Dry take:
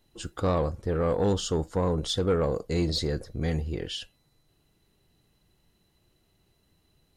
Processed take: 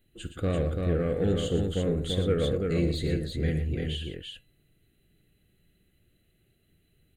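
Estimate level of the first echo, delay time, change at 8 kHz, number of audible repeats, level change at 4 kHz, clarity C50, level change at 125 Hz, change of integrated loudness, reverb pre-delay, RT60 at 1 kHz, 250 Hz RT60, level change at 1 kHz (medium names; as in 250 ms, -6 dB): -14.5 dB, 52 ms, -6.5 dB, 3, -2.5 dB, no reverb, +1.5 dB, 0.0 dB, no reverb, no reverb, no reverb, -9.5 dB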